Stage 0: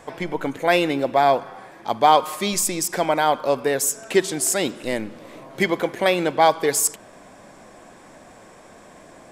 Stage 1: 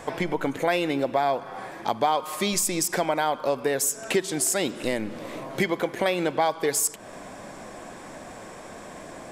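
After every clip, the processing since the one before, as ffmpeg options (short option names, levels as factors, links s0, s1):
-af "acompressor=threshold=0.0355:ratio=3,volume=1.78"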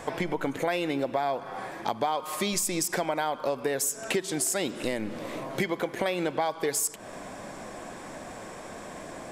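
-af "acompressor=threshold=0.0447:ratio=2"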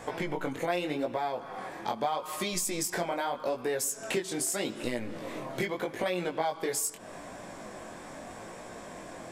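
-af "flanger=delay=16.5:depth=7.1:speed=0.81"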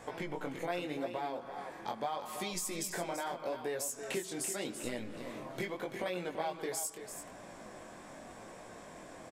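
-af "aecho=1:1:336:0.335,volume=0.473"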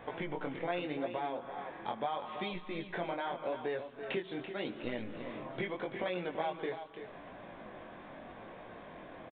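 -af "aresample=8000,aresample=44100,volume=1.12"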